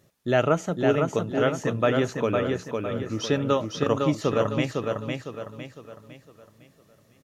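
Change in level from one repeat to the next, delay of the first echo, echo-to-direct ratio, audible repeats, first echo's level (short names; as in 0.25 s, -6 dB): -8.0 dB, 0.506 s, -3.0 dB, 4, -4.0 dB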